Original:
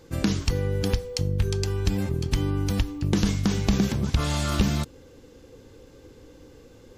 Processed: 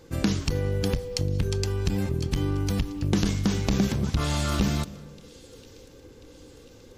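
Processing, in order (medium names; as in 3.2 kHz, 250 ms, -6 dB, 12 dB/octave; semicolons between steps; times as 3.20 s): feedback echo behind a high-pass 1039 ms, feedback 55%, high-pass 3.1 kHz, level -20 dB; on a send at -20 dB: reverberation RT60 1.4 s, pre-delay 145 ms; on the sum: transformer saturation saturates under 180 Hz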